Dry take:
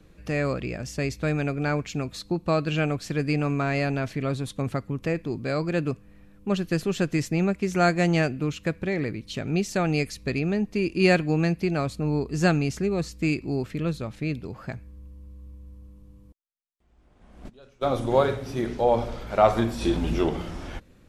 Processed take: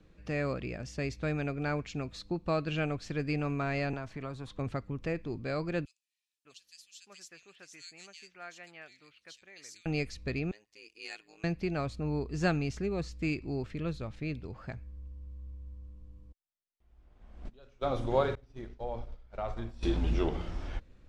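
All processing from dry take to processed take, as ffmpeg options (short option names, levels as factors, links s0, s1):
-filter_complex "[0:a]asettb=1/sr,asplit=3[s0][s1][s2];[s0]atrim=end=3.934[s3];[s1]atrim=start=3.93:end=4.59,asetpts=PTS-STARTPTS,afade=t=in:d=0.004:c=qsin,afade=t=out:st=0.656:d=0.004:c=qsin,equalizer=f=1000:t=o:w=1.3:g=11,acrossover=split=320|5900[s4][s5][s6];[s4]acompressor=threshold=0.0224:ratio=4[s7];[s5]acompressor=threshold=0.0178:ratio=4[s8];[s6]acompressor=threshold=0.00251:ratio=4[s9];[s7][s8][s9]amix=inputs=3:normalize=0[s10];[s2]atrim=start=4.586[s11];[s3][s10]acrossfade=d=0.004:c1=hsin:c2=qsin[s12];[s12][s11]acrossfade=d=0.004:c1=qsin:c2=hsin,asettb=1/sr,asplit=3[s13][s14][s15];[s13]atrim=end=5.854[s16];[s14]atrim=start=5.85:end=9.86,asetpts=PTS-STARTPTS,afade=t=in:d=0.004:c=qsin,afade=t=out:st=4.006:d=0.004:c=qsin,aderivative,acrossover=split=2700[s17][s18];[s17]adelay=600[s19];[s19][s18]amix=inputs=2:normalize=0,atrim=end_sample=176841[s20];[s15]atrim=start=9.856[s21];[s16][s20]acrossfade=d=0.004:c1=hsin:c2=qsin[s22];[s22][s21]acrossfade=d=0.004:c1=qsin:c2=hsin,asettb=1/sr,asplit=3[s23][s24][s25];[s23]atrim=end=10.514[s26];[s24]atrim=start=10.51:end=11.44,asetpts=PTS-STARTPTS,afade=t=in:d=0.004:c=qsin,afade=t=out:st=0.926:d=0.004:c=qsin,aecho=1:1:2.8:0.61,atrim=end_sample=41013,tremolo=f=110:d=0.947,aderivative[s27];[s25]atrim=start=11.436[s28];[s26][s27]acrossfade=d=0.004:c1=hsin:c2=qsin[s29];[s29][s28]acrossfade=d=0.004:c1=qsin:c2=hsin,asettb=1/sr,asplit=3[s30][s31][s32];[s30]atrim=end=18.354[s33];[s31]atrim=start=18.35:end=19.83,asetpts=PTS-STARTPTS,afade=t=in:d=0.004:c=qsin,afade=t=out:st=1.476:d=0.004:c=qsin,agate=range=0.0224:threshold=0.0794:ratio=3:release=100:detection=peak,lowshelf=f=71:g=10,acompressor=threshold=0.0178:ratio=2:attack=3.2:release=140:knee=1:detection=peak[s34];[s32]atrim=start=19.826[s35];[s33][s34]acrossfade=d=0.004:c1=hsin:c2=qsin[s36];[s36][s35]acrossfade=d=0.004:c1=qsin:c2=hsin,lowpass=6100,asubboost=boost=2.5:cutoff=88,volume=0.473"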